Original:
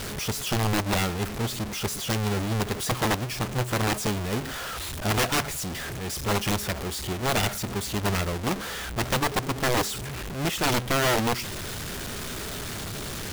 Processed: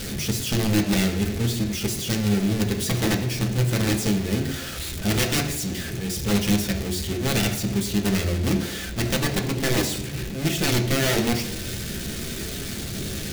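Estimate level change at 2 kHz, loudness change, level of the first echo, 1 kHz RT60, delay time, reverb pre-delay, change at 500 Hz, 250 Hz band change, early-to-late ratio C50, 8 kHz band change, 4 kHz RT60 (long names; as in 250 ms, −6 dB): +0.5 dB, +3.0 dB, no echo audible, 0.80 s, no echo audible, 3 ms, +1.5 dB, +7.0 dB, 9.0 dB, +3.0 dB, 0.85 s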